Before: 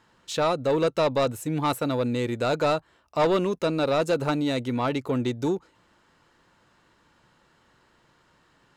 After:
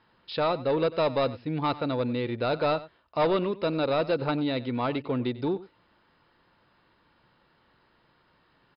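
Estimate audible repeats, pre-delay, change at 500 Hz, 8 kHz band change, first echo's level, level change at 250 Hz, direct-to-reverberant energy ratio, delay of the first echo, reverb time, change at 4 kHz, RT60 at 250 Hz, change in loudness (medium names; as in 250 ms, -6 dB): 1, no reverb, -2.5 dB, under -35 dB, -17.5 dB, -2.5 dB, no reverb, 95 ms, no reverb, -2.5 dB, no reverb, -2.5 dB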